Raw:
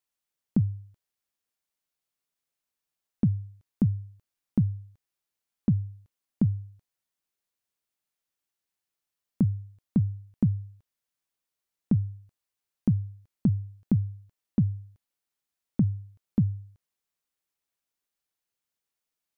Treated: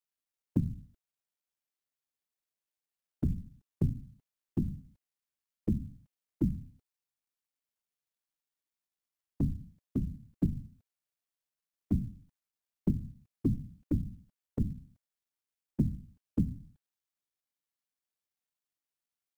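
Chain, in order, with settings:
random phases in short frames
log-companded quantiser 8 bits
level −6 dB

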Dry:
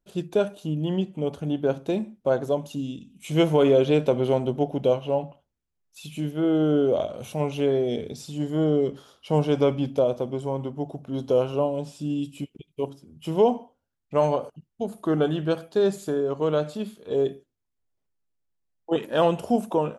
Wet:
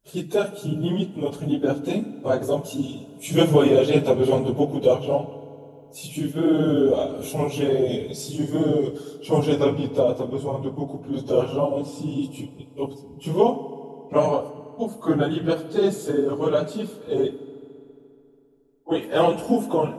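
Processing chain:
random phases in long frames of 50 ms
high-shelf EQ 6,000 Hz +11.5 dB, from 0:09.59 +4.5 dB
convolution reverb RT60 3.0 s, pre-delay 4 ms, DRR 14 dB
level +1.5 dB

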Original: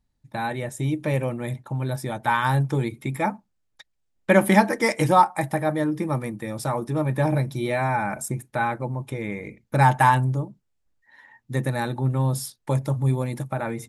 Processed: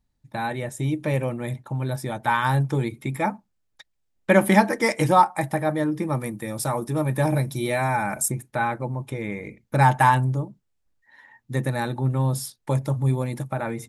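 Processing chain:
0:06.18–0:08.30: high-shelf EQ 8,700 Hz → 5,400 Hz +11.5 dB

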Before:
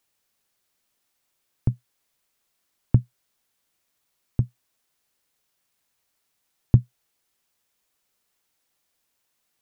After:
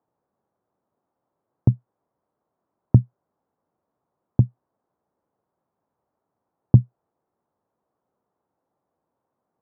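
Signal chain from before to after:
high-pass filter 100 Hz 12 dB per octave
in parallel at +2 dB: brickwall limiter −13 dBFS, peak gain reduction 6.5 dB
on the sum: low-pass filter 1,000 Hz 24 dB per octave
level +1 dB

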